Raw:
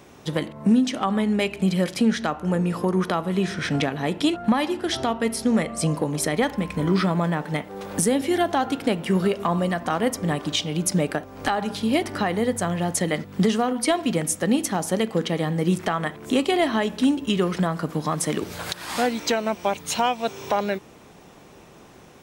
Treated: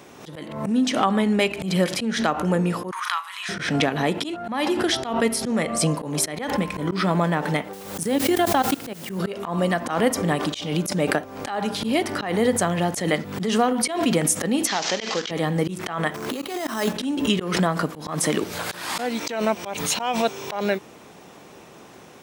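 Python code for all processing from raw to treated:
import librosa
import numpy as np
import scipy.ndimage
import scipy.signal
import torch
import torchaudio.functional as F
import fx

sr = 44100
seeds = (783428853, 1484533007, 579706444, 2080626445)

y = fx.chain(x, sr, fx.ellip_highpass(hz=1000.0, order=4, stop_db=50),
    fx.doubler(ms=36.0, db=-13), at=(2.91, 3.49))
y = fx.chain(y, sr, fx.peak_eq(hz=74.0, db=7.0, octaves=2.4),
    fx.level_steps(step_db=21),
    fx.quant_dither(seeds[0], bits=8, dither='triangular'), at=(7.73, 9.19))
y = fx.chain(y, sr, fx.cvsd(bps=32000),
    fx.tilt_eq(slope=4.5), at=(14.67, 15.31))
y = fx.chain(y, sr, fx.peak_eq(hz=1300.0, db=5.0, octaves=0.76),
    fx.over_compress(threshold_db=-25.0, ratio=-0.5),
    fx.sample_hold(seeds[1], rate_hz=7000.0, jitter_pct=0), at=(16.14, 16.93))
y = fx.highpass(y, sr, hz=180.0, slope=6)
y = fx.auto_swell(y, sr, attack_ms=186.0)
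y = fx.pre_swell(y, sr, db_per_s=64.0)
y = F.gain(torch.from_numpy(y), 3.5).numpy()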